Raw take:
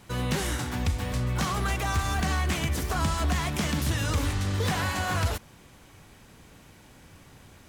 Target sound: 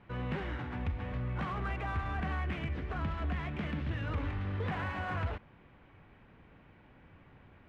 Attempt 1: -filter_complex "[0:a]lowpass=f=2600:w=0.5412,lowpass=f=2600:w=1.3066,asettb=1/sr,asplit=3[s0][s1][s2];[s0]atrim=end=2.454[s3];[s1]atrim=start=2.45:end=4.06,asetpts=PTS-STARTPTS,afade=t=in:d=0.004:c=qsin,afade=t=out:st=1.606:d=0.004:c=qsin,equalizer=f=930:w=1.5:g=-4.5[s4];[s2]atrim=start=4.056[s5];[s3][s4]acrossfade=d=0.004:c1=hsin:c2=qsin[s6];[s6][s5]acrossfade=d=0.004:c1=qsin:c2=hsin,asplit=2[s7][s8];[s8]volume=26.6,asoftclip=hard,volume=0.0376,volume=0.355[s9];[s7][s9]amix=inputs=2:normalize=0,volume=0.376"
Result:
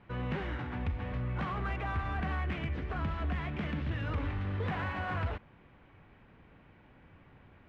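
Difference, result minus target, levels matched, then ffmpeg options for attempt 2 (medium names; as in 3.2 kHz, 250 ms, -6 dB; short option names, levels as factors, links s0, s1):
overload inside the chain: distortion -4 dB
-filter_complex "[0:a]lowpass=f=2600:w=0.5412,lowpass=f=2600:w=1.3066,asettb=1/sr,asplit=3[s0][s1][s2];[s0]atrim=end=2.454[s3];[s1]atrim=start=2.45:end=4.06,asetpts=PTS-STARTPTS,afade=t=in:d=0.004:c=qsin,afade=t=out:st=1.606:d=0.004:c=qsin,equalizer=f=930:w=1.5:g=-4.5[s4];[s2]atrim=start=4.056[s5];[s3][s4]acrossfade=d=0.004:c1=hsin:c2=qsin[s6];[s6][s5]acrossfade=d=0.004:c1=qsin:c2=hsin,asplit=2[s7][s8];[s8]volume=70.8,asoftclip=hard,volume=0.0141,volume=0.355[s9];[s7][s9]amix=inputs=2:normalize=0,volume=0.376"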